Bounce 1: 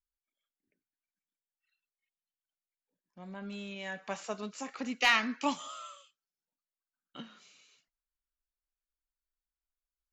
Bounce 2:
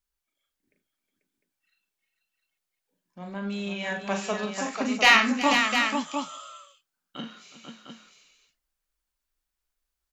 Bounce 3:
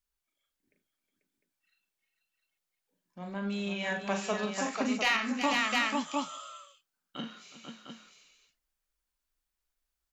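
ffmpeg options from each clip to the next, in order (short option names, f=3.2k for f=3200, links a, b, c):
-af "aecho=1:1:40|77|364|490|703:0.531|0.15|0.168|0.501|0.447,volume=7.5dB"
-af "alimiter=limit=-15dB:level=0:latency=1:release=371,volume=-2dB"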